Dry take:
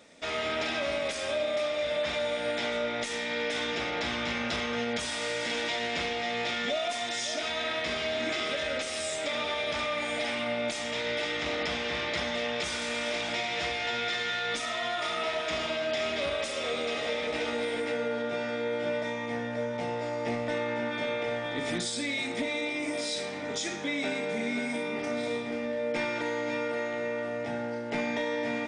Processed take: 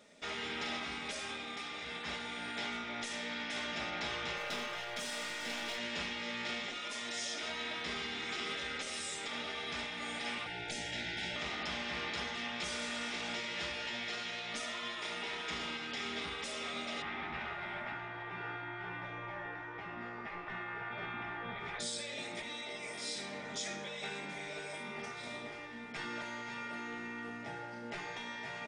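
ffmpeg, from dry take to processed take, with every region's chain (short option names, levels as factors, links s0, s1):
-filter_complex "[0:a]asettb=1/sr,asplit=3[s0][s1][s2];[s0]atrim=end=4.374[s3];[s1]atrim=start=4.37:end=5.78,asetpts=PTS-STARTPTS,afade=t=in:d=0.004:c=qsin,afade=t=out:st=1.406:d=0.004:c=qsin,highpass=150,aeval=exprs='clip(val(0),-1,0.0251)':c=same[s4];[s2]atrim=start=5.776[s5];[s3][s4]acrossfade=d=0.004:c1=hsin:c2=qsin[s6];[s6][s5]acrossfade=d=0.004:c1=qsin:c2=hsin,asettb=1/sr,asplit=3[s7][s8][s9];[s7]atrim=end=10.464[s10];[s8]atrim=start=10.46:end=11.36,asetpts=PTS-STARTPTS,afade=t=in:d=0.004:c=qsin,afade=t=out:st=0.896:d=0.004:c=qsin,asuperstop=centerf=1100:order=20:qfactor=2.4,lowshelf=f=360:g=9.5[s11];[s9]atrim=start=11.356[s12];[s10][s11]acrossfade=d=0.004:c1=hsin:c2=qsin[s13];[s13][s12]acrossfade=d=0.004:c1=qsin:c2=hsin,asettb=1/sr,asplit=3[s14][s15][s16];[s14]atrim=end=17.024[s17];[s15]atrim=start=17.02:end=21.79,asetpts=PTS-STARTPTS,afade=t=in:d=0.004:c=qsin,afade=t=out:st=4.766:d=0.004:c=qsin,lowpass=1700,acontrast=37,aecho=1:1:586:0.211,atrim=end_sample=210357[s18];[s16]atrim=start=21.786[s19];[s17][s18]acrossfade=d=0.004:c1=hsin:c2=qsin[s20];[s20][s19]acrossfade=d=0.004:c1=qsin:c2=hsin,afftfilt=real='re*lt(hypot(re,im),0.1)':imag='im*lt(hypot(re,im),0.1)':win_size=1024:overlap=0.75,aecho=1:1:4.9:0.34,volume=0.501"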